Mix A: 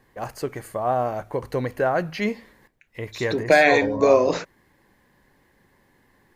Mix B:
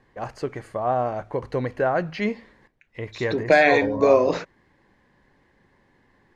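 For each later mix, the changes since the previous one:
master: add air absorption 93 m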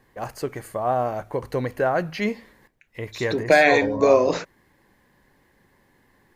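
master: remove air absorption 93 m

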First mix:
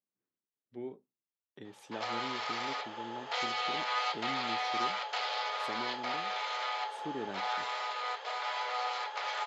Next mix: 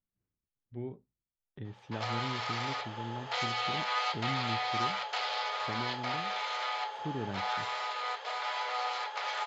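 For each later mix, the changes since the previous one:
speech: add air absorption 190 m; master: remove Chebyshev high-pass 310 Hz, order 2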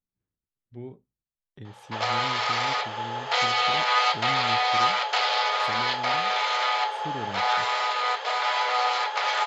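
speech: remove air absorption 190 m; background +10.0 dB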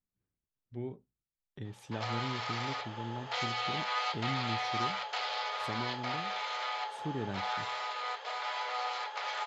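background -11.5 dB

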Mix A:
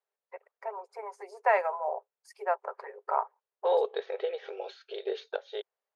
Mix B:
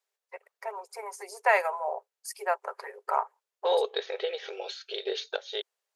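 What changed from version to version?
master: remove band-pass 570 Hz, Q 0.55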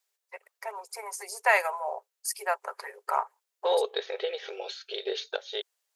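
first voice: add tilt +2.5 dB/oct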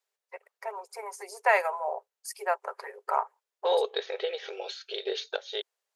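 first voice: add tilt -2.5 dB/oct

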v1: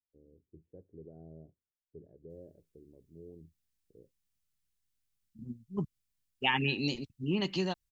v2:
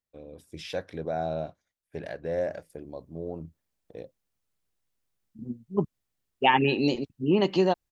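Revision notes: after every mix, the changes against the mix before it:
first voice: remove ladder low-pass 450 Hz, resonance 65%; master: add bell 570 Hz +14.5 dB 2.5 oct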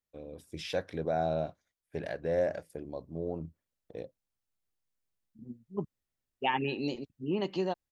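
second voice -9.0 dB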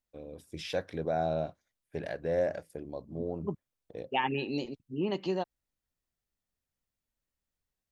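second voice: entry -2.30 s

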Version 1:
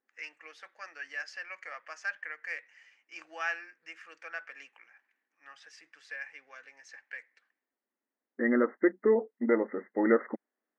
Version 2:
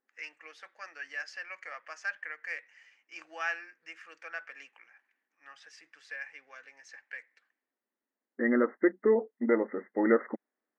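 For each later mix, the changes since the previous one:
none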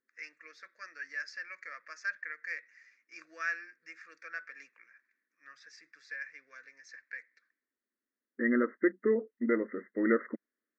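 master: add fixed phaser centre 3000 Hz, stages 6

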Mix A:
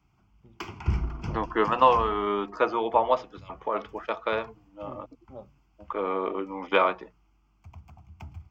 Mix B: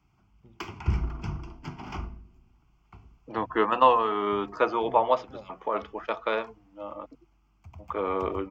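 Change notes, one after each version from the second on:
second voice: entry +2.00 s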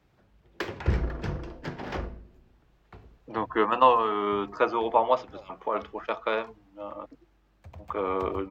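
first voice: add HPF 500 Hz; background: remove fixed phaser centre 2600 Hz, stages 8

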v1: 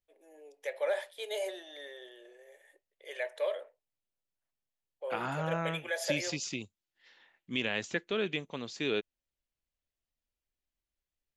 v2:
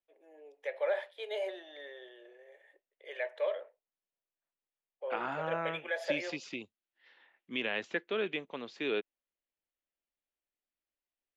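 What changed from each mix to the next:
master: add three-band isolator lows -16 dB, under 230 Hz, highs -20 dB, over 3700 Hz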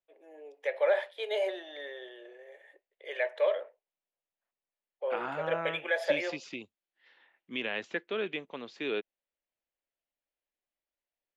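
first voice +5.5 dB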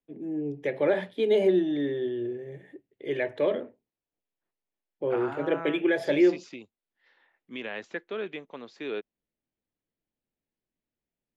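first voice: remove elliptic high-pass 540 Hz, stop band 80 dB; second voice: add bell 2900 Hz -6 dB 0.8 oct

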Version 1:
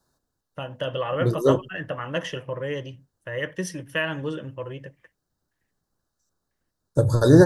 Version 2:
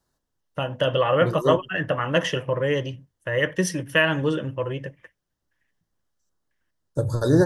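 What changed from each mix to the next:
first voice +6.5 dB; second voice -4.5 dB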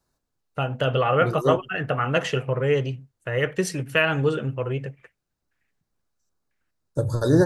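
first voice: remove ripple EQ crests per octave 1.2, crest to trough 9 dB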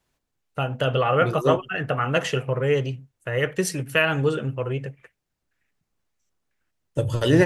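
first voice: add high shelf 9200 Hz +9.5 dB; second voice: remove Chebyshev band-stop 1700–3700 Hz, order 5

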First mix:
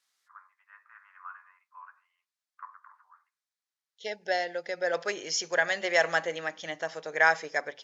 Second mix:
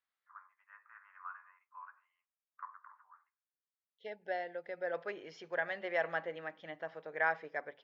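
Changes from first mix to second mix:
second voice -7.0 dB; master: add air absorption 430 m

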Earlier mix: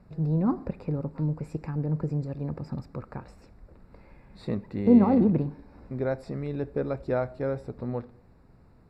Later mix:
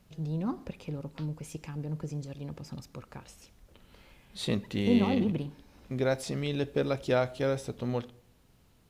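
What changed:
first voice -7.5 dB; master: remove running mean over 14 samples

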